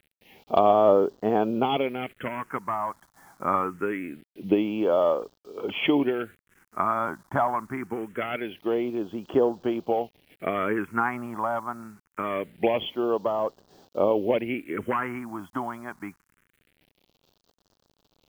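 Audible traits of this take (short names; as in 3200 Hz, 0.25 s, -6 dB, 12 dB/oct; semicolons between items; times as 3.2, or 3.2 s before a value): a quantiser's noise floor 10-bit, dither none; phasing stages 4, 0.24 Hz, lowest notch 440–2200 Hz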